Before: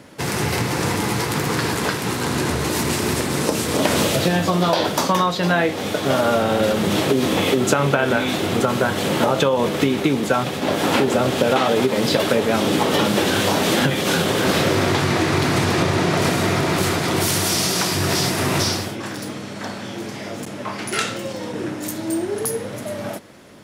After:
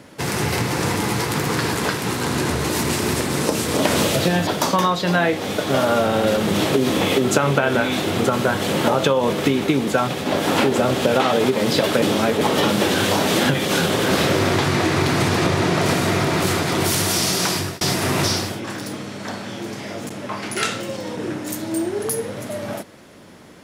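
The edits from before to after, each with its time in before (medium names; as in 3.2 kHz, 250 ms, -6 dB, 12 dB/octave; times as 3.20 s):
4.47–4.83 s: delete
12.38–12.77 s: reverse
17.90–18.17 s: fade out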